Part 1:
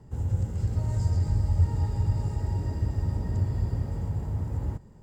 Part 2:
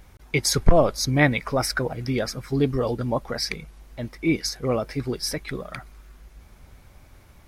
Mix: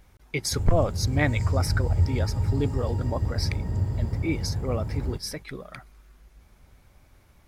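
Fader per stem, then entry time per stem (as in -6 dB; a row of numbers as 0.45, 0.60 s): +0.5, -6.0 dB; 0.40, 0.00 s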